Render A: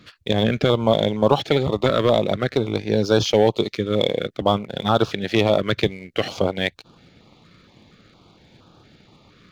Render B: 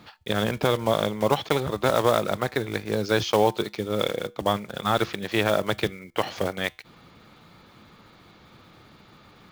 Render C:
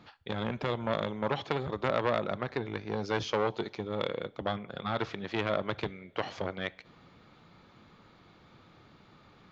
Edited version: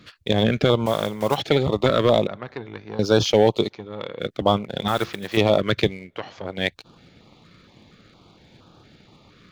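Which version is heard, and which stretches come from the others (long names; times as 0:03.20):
A
0:00.86–0:01.38: punch in from B
0:02.27–0:02.99: punch in from C
0:03.71–0:04.21: punch in from C, crossfade 0.06 s
0:04.88–0:05.37: punch in from B
0:06.09–0:06.55: punch in from C, crossfade 0.24 s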